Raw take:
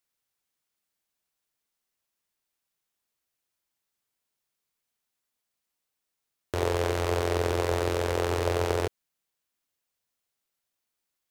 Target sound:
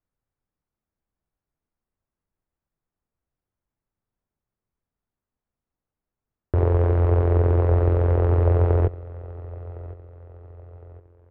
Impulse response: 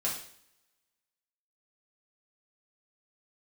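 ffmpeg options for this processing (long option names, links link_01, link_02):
-filter_complex "[0:a]lowpass=1500,aemphasis=mode=reproduction:type=riaa,asplit=2[link_01][link_02];[link_02]aecho=0:1:1060|2120|3180:0.112|0.0471|0.0198[link_03];[link_01][link_03]amix=inputs=2:normalize=0"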